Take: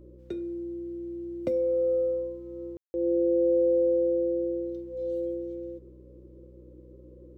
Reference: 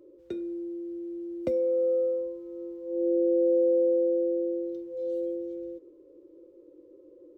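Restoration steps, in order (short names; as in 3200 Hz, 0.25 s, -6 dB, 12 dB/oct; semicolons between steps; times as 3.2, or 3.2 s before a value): de-hum 62.2 Hz, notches 5; room tone fill 2.77–2.94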